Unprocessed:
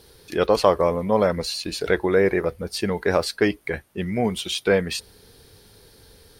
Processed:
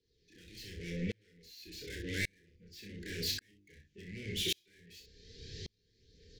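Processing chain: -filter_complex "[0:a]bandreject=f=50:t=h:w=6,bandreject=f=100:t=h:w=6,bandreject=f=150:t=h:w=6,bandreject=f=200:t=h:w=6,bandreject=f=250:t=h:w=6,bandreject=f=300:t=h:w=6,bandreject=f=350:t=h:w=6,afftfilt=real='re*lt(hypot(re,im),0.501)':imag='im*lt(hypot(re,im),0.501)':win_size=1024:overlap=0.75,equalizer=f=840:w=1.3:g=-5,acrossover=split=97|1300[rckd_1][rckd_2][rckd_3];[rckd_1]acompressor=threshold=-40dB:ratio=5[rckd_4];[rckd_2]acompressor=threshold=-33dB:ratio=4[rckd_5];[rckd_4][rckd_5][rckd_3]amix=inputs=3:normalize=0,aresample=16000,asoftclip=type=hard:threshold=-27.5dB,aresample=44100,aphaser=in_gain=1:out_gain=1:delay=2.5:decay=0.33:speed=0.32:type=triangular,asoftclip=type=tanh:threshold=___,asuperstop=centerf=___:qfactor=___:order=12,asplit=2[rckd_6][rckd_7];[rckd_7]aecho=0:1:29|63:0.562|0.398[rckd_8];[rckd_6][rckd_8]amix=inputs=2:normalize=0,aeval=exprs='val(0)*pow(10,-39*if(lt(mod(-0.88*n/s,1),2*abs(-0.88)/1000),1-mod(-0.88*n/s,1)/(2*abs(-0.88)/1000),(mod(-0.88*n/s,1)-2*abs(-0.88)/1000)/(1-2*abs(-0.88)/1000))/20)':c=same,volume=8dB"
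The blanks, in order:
-38dB, 920, 0.75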